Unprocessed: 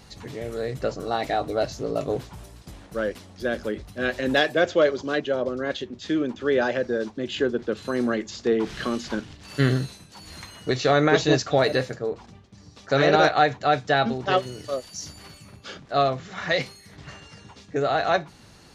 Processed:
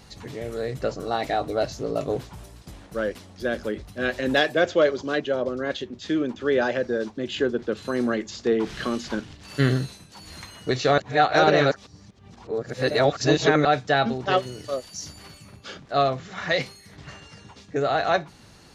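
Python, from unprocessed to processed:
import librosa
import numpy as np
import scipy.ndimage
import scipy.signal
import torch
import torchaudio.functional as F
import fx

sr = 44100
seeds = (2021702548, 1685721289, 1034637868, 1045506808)

y = fx.edit(x, sr, fx.reverse_span(start_s=10.98, length_s=2.67), tone=tone)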